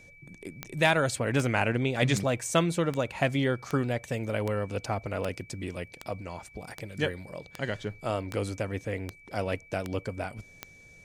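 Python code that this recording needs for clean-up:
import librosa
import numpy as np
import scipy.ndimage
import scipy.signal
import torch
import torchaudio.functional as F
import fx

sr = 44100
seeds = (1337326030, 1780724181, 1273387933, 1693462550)

y = fx.fix_declip(x, sr, threshold_db=-11.5)
y = fx.fix_declick_ar(y, sr, threshold=10.0)
y = fx.notch(y, sr, hz=2300.0, q=30.0)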